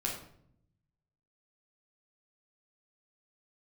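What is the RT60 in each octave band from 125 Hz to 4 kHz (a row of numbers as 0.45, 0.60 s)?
1.5, 1.1, 0.75, 0.60, 0.50, 0.45 s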